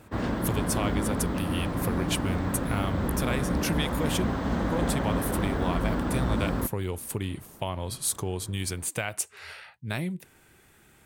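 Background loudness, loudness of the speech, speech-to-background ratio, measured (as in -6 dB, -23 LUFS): -29.5 LUFS, -32.5 LUFS, -3.0 dB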